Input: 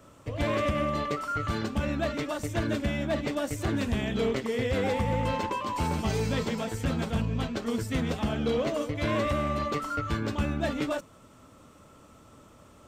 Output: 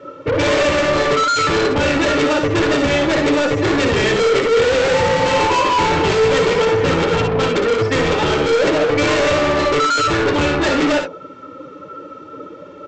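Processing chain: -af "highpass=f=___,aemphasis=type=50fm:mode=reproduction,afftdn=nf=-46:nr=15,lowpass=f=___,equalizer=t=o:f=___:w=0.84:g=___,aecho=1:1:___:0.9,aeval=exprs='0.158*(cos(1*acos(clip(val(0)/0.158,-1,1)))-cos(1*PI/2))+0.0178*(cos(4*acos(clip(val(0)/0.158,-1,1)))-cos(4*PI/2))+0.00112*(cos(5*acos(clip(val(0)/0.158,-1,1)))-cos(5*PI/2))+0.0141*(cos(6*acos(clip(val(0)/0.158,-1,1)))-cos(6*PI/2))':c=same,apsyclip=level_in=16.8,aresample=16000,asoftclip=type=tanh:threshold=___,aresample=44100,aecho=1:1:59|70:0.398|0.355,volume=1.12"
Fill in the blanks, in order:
200, 4700, 850, -5.5, 2.2, 0.158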